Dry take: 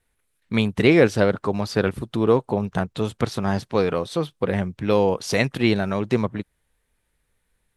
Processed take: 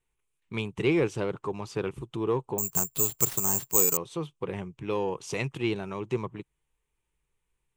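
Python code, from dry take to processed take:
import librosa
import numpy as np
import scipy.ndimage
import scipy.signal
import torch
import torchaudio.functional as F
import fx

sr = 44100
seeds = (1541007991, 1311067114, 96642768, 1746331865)

p1 = fx.ripple_eq(x, sr, per_octave=0.7, db=9)
p2 = 10.0 ** (-11.0 / 20.0) * np.tanh(p1 / 10.0 ** (-11.0 / 20.0))
p3 = p1 + (p2 * librosa.db_to_amplitude(-7.0))
p4 = fx.resample_bad(p3, sr, factor=6, down='none', up='zero_stuff', at=(2.58, 3.97))
y = p4 * librosa.db_to_amplitude(-13.5)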